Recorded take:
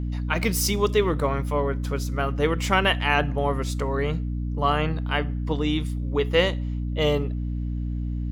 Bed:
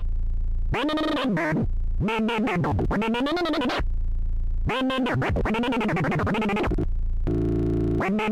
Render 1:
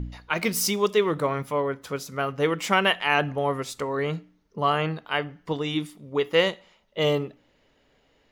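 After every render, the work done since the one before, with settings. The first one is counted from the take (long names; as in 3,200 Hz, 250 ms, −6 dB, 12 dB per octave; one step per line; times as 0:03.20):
hum removal 60 Hz, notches 5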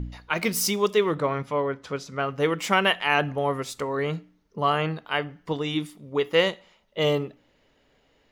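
0:01.15–0:02.32: low-pass filter 5,800 Hz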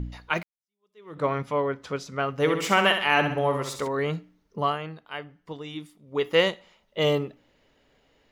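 0:00.43–0:01.24: fade in exponential
0:02.35–0:03.88: flutter between parallel walls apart 11.2 metres, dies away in 0.56 s
0:04.61–0:06.24: duck −9.5 dB, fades 0.18 s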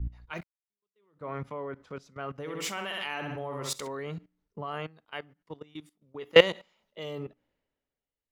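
output level in coarse steps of 18 dB
multiband upward and downward expander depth 70%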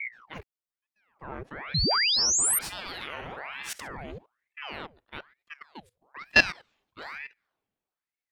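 0:01.74–0:02.59: sound drawn into the spectrogram rise 1,900–11,000 Hz −21 dBFS
ring modulator whose carrier an LFO sweeps 1,200 Hz, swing 85%, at 1.1 Hz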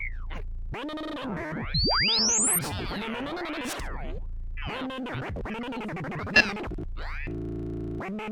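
mix in bed −10 dB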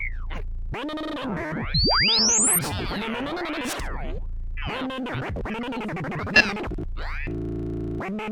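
level +4 dB
brickwall limiter −1 dBFS, peak gain reduction 1.5 dB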